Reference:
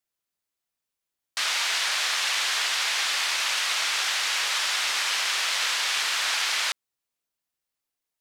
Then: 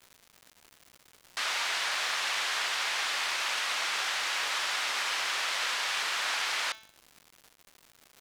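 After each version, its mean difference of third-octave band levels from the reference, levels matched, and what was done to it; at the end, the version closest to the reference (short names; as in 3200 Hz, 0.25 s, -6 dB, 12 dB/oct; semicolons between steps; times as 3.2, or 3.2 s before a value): 3.5 dB: high shelf 2100 Hz -8.5 dB; de-hum 219.5 Hz, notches 32; crackle 280/s -41 dBFS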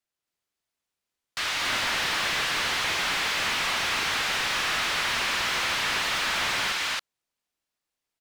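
8.5 dB: high shelf 10000 Hz -10 dB; loudspeakers at several distances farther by 78 m -5 dB, 94 m -2 dB; slew limiter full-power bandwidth 160 Hz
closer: first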